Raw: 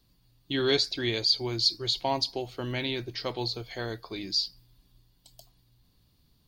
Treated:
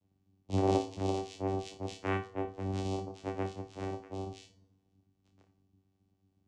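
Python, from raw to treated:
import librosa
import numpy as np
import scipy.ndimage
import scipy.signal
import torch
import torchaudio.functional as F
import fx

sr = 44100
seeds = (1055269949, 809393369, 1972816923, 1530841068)

p1 = fx.partial_stretch(x, sr, pct=127)
p2 = fx.lowpass(p1, sr, hz=4000.0, slope=12, at=(2.09, 2.52), fade=0.02)
p3 = fx.vocoder(p2, sr, bands=4, carrier='saw', carrier_hz=96.1)
p4 = p3 + fx.room_flutter(p3, sr, wall_m=4.9, rt60_s=0.29, dry=0)
y = fx.rev_fdn(p4, sr, rt60_s=1.2, lf_ratio=0.95, hf_ratio=0.5, size_ms=20.0, drr_db=14.0)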